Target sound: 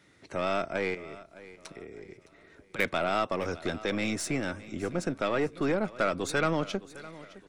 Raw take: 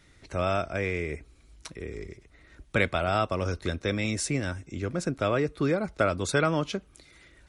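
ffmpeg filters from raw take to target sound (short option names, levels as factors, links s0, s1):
-filter_complex "[0:a]highpass=160,highshelf=f=2500:g=-5.5,acrossover=split=1300[s0][s1];[s0]alimiter=limit=0.0891:level=0:latency=1[s2];[s2][s1]amix=inputs=2:normalize=0,asettb=1/sr,asplit=3[s3][s4][s5];[s3]atrim=end=0.944[s6];[s4]atrim=start=0.94:end=2.79,asetpts=PTS-STARTPTS,afade=t=in:d=0.004:c=qsin,afade=t=out:st=1.846:d=0.004:c=qsin,acompressor=threshold=0.00794:ratio=5[s7];[s5]atrim=start=2.786[s8];[s6][s7]acrossfade=d=0.004:c1=hsin:c2=qsin[s9];[s9][s8]acrossfade=d=0.004:c1=qsin:c2=hsin,aeval=exprs='0.188*(cos(1*acos(clip(val(0)/0.188,-1,1)))-cos(1*PI/2))+0.015*(cos(4*acos(clip(val(0)/0.188,-1,1)))-cos(4*PI/2))+0.0211*(cos(6*acos(clip(val(0)/0.188,-1,1)))-cos(6*PI/2))':c=same,aecho=1:1:612|1224|1836:0.126|0.0478|0.0182,volume=1.12"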